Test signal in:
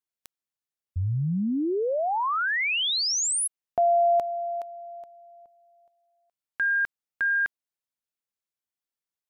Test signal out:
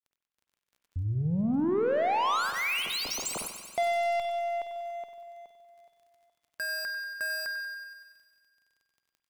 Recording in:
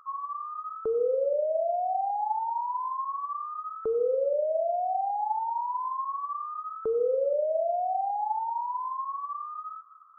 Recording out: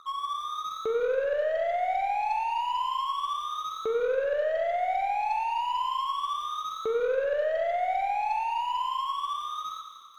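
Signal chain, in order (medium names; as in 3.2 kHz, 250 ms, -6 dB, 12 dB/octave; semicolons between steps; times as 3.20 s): median filter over 25 samples; peaking EQ 77 Hz -8.5 dB 2.3 oct; in parallel at -2.5 dB: compression, threshold -39 dBFS; on the sum: Chebyshev shaper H 4 -28 dB, 5 -29 dB, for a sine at -15.5 dBFS; crackle 18 per s -53 dBFS; saturation -25 dBFS; on a send: thinning echo 94 ms, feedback 73%, high-pass 820 Hz, level -9 dB; on the sum: spring tank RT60 1.7 s, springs 47 ms, chirp 55 ms, DRR 7.5 dB; trim +1 dB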